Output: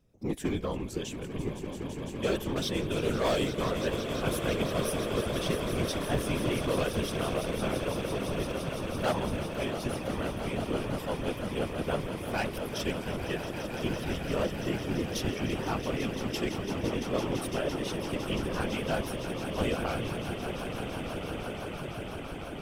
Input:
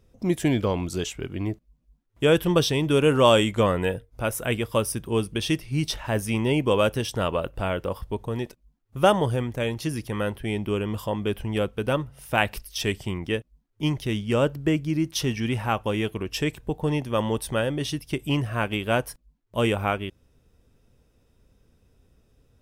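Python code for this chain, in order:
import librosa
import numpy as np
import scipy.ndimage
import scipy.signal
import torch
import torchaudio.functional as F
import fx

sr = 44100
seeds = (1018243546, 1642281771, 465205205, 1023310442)

y = np.clip(10.0 ** (17.0 / 20.0) * x, -1.0, 1.0) / 10.0 ** (17.0 / 20.0)
y = fx.echo_swell(y, sr, ms=169, loudest=8, wet_db=-11.5)
y = fx.whisperise(y, sr, seeds[0])
y = F.gain(torch.from_numpy(y), -8.0).numpy()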